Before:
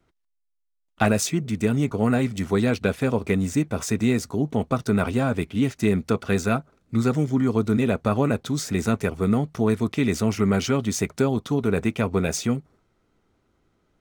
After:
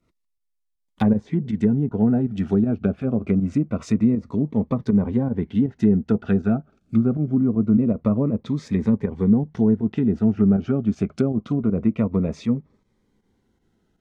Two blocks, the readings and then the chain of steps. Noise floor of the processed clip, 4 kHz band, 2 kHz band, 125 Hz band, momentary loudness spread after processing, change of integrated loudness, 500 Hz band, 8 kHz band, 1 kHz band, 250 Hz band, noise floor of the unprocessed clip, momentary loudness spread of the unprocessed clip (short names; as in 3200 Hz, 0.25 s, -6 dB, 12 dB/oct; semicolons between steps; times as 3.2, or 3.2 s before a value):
-74 dBFS, under -10 dB, under -10 dB, +1.5 dB, 5 LU, +2.0 dB, -2.5 dB, under -15 dB, -7.5 dB, +4.0 dB, -74 dBFS, 3 LU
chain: treble ducked by the level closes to 700 Hz, closed at -17.5 dBFS; bell 210 Hz +6.5 dB 0.5 oct; pump 159 bpm, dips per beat 1, -9 dB, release 74 ms; cascading phaser falling 0.25 Hz